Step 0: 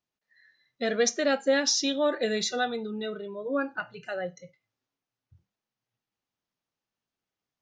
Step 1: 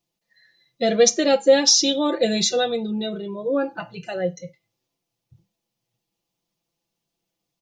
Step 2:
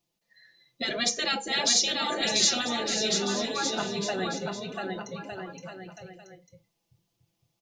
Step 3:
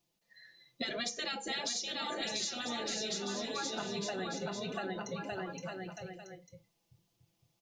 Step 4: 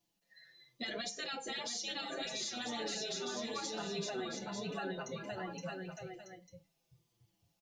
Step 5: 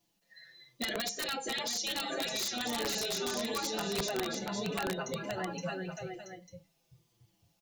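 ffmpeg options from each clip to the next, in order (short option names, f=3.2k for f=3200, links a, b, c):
-af "equalizer=f=1.5k:t=o:w=1:g=-12.5,aecho=1:1:5.9:0.69,volume=8.5dB"
-af "afftfilt=real='re*lt(hypot(re,im),0.355)':imag='im*lt(hypot(re,im),0.355)':win_size=1024:overlap=0.75,aecho=1:1:690|1208|1596|1887|2105:0.631|0.398|0.251|0.158|0.1"
-af "acompressor=threshold=-34dB:ratio=10"
-filter_complex "[0:a]alimiter=level_in=4.5dB:limit=-24dB:level=0:latency=1:release=60,volume=-4.5dB,asplit=2[a][b];[b]adelay=6.5,afreqshift=-1.1[c];[a][c]amix=inputs=2:normalize=1,volume=1.5dB"
-af "aeval=exprs='(mod(35.5*val(0)+1,2)-1)/35.5':c=same,volume=5.5dB"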